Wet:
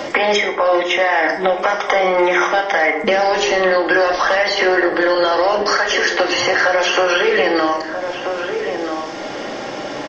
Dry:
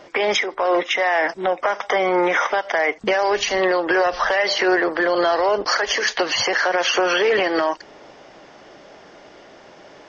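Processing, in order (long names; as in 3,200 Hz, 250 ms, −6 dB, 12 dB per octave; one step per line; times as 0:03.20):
slap from a distant wall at 220 metres, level −14 dB
convolution reverb RT60 0.65 s, pre-delay 4 ms, DRR 1.5 dB
multiband upward and downward compressor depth 70%
level +1 dB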